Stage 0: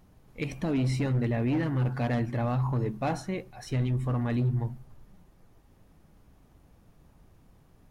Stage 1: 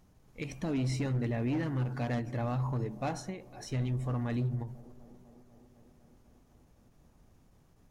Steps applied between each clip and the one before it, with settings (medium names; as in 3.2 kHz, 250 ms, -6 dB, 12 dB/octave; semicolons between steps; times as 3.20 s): peaking EQ 6.4 kHz +6 dB 0.76 oct; feedback echo behind a band-pass 249 ms, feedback 78%, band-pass 420 Hz, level -19 dB; endings held to a fixed fall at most 120 dB/s; trim -4.5 dB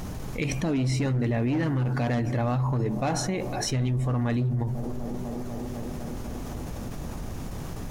level flattener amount 70%; trim +4.5 dB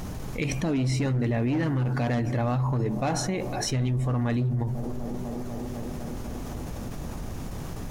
no audible change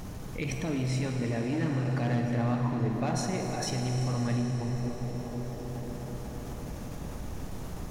reverberation RT60 5.6 s, pre-delay 37 ms, DRR 2 dB; trim -5.5 dB